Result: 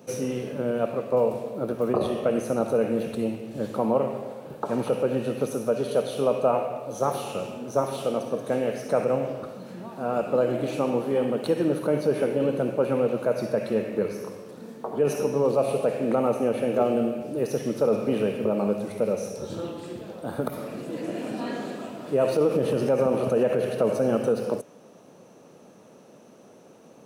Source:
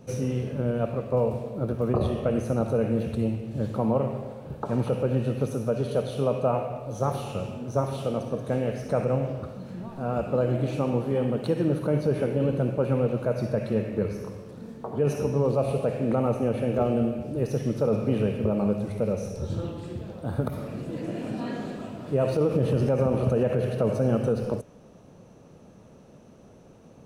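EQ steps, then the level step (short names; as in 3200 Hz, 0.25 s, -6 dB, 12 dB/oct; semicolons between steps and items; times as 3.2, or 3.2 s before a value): HPF 250 Hz 12 dB/oct; high shelf 9600 Hz +7 dB; +3.0 dB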